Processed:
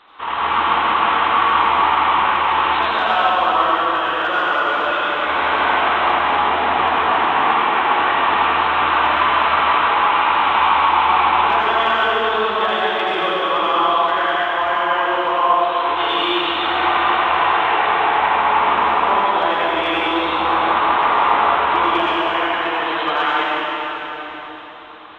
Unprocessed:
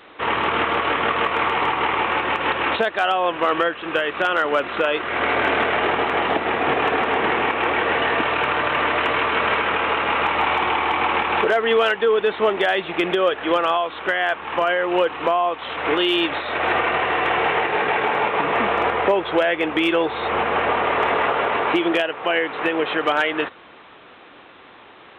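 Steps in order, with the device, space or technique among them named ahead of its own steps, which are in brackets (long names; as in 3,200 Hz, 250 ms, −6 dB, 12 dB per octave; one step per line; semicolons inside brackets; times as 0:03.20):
octave-band graphic EQ 125/250/500/1,000/2,000/4,000 Hz −9/−3/−9/+9/−4/+8 dB
swimming-pool hall (convolution reverb RT60 4.2 s, pre-delay 74 ms, DRR −7.5 dB; high-shelf EQ 3,300 Hz −7.5 dB)
level −5 dB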